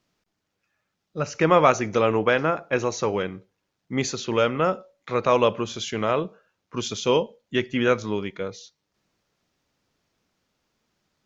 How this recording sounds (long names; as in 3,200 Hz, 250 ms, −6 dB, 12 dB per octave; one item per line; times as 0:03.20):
background noise floor −79 dBFS
spectral slope −5.0 dB per octave